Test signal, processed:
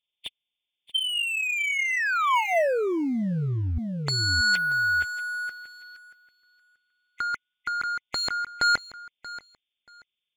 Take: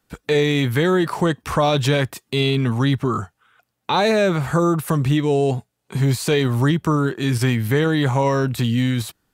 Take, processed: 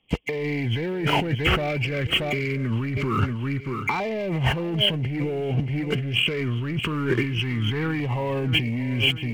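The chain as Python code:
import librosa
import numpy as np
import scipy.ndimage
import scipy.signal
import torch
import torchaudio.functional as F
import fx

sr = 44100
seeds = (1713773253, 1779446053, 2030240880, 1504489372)

y = fx.freq_compress(x, sr, knee_hz=2000.0, ratio=4.0)
y = fx.leveller(y, sr, passes=2)
y = fx.filter_lfo_notch(y, sr, shape='saw_down', hz=0.25, low_hz=550.0, high_hz=1500.0, q=1.4)
y = fx.echo_feedback(y, sr, ms=632, feedback_pct=21, wet_db=-17)
y = fx.over_compress(y, sr, threshold_db=-21.0, ratio=-1.0)
y = F.gain(torch.from_numpy(y), -3.5).numpy()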